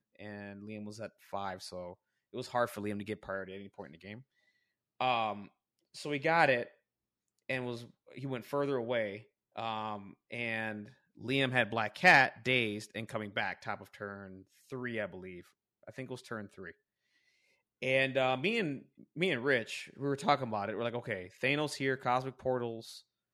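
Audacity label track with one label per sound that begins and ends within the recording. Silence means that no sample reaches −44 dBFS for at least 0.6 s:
5.010000	6.670000	sound
7.490000	16.710000	sound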